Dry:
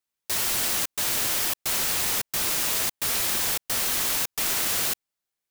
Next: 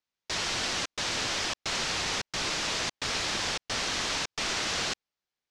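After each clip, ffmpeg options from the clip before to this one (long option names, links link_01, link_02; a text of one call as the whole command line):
ffmpeg -i in.wav -af "lowpass=frequency=6000:width=0.5412,lowpass=frequency=6000:width=1.3066" out.wav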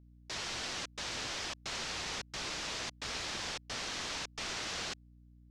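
ffmpeg -i in.wav -af "aeval=exprs='val(0)+0.00355*(sin(2*PI*60*n/s)+sin(2*PI*2*60*n/s)/2+sin(2*PI*3*60*n/s)/3+sin(2*PI*4*60*n/s)/4+sin(2*PI*5*60*n/s)/5)':channel_layout=same,volume=-8.5dB" out.wav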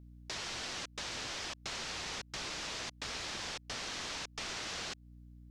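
ffmpeg -i in.wav -af "acompressor=threshold=-46dB:ratio=2.5,volume=5dB" out.wav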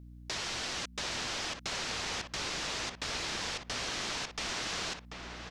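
ffmpeg -i in.wav -filter_complex "[0:a]asplit=2[link_01][link_02];[link_02]adelay=738,lowpass=frequency=2100:poles=1,volume=-5dB,asplit=2[link_03][link_04];[link_04]adelay=738,lowpass=frequency=2100:poles=1,volume=0.17,asplit=2[link_05][link_06];[link_06]adelay=738,lowpass=frequency=2100:poles=1,volume=0.17[link_07];[link_01][link_03][link_05][link_07]amix=inputs=4:normalize=0,volume=4dB" out.wav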